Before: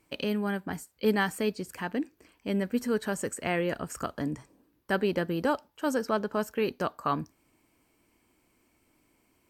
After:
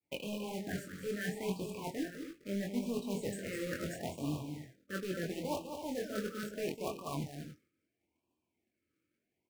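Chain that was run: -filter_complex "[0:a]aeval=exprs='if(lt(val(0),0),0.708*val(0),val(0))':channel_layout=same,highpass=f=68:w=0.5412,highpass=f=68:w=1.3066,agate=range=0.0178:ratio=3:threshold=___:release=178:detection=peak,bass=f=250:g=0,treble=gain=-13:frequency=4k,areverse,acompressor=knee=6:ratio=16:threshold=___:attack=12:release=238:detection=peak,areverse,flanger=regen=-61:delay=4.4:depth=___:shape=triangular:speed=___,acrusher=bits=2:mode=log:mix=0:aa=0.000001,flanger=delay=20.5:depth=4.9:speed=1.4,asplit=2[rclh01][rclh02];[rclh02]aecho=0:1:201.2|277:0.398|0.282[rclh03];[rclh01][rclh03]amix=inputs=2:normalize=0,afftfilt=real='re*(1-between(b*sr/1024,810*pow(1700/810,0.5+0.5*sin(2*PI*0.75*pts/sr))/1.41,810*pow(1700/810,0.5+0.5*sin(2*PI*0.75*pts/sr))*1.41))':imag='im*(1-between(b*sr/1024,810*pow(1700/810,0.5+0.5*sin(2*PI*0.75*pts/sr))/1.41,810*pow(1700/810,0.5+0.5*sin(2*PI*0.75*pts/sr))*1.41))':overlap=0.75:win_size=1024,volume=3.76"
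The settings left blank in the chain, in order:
0.00126, 0.0112, 7.6, 0.43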